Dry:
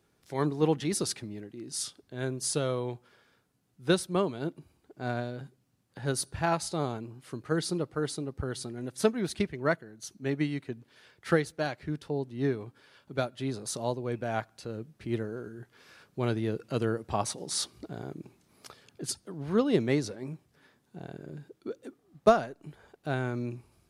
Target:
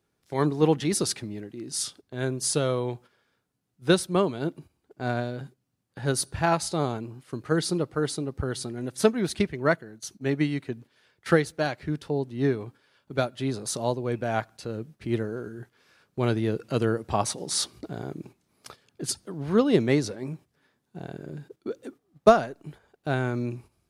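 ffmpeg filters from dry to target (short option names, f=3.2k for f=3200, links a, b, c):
-af "agate=range=-10dB:threshold=-50dB:ratio=16:detection=peak,volume=4.5dB"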